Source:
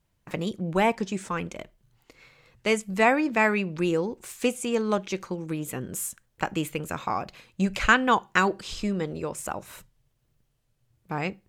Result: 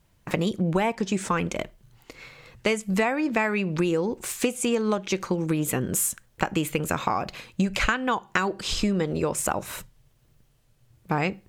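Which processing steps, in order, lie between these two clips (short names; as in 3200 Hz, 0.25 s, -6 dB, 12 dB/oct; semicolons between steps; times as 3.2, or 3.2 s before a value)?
compressor 16:1, threshold -29 dBFS, peak gain reduction 17 dB; gain +9 dB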